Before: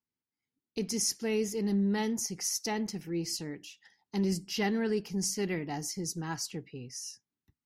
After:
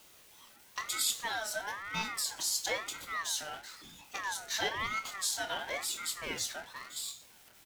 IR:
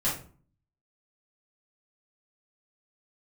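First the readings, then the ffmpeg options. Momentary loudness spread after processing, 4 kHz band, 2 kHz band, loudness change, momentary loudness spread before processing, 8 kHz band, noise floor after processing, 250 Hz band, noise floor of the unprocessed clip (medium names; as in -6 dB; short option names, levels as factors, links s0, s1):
12 LU, +3.0 dB, +5.5 dB, -2.0 dB, 12 LU, -0.5 dB, -59 dBFS, -21.0 dB, under -85 dBFS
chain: -filter_complex "[0:a]aeval=exprs='val(0)+0.5*0.0075*sgn(val(0))':c=same,bandreject=f=5900:w=24,agate=range=0.355:threshold=0.01:ratio=16:detection=peak,highpass=510,asplit=2[s0][s1];[s1]acompressor=threshold=0.00562:ratio=6,volume=0.841[s2];[s0][s2]amix=inputs=2:normalize=0,asplit=2[s3][s4];[s4]adelay=24,volume=0.299[s5];[s3][s5]amix=inputs=2:normalize=0,asplit=2[s6][s7];[1:a]atrim=start_sample=2205,asetrate=36603,aresample=44100[s8];[s7][s8]afir=irnorm=-1:irlink=0,volume=0.141[s9];[s6][s9]amix=inputs=2:normalize=0,aeval=exprs='val(0)*sin(2*PI*1400*n/s+1400*0.25/1*sin(2*PI*1*n/s))':c=same"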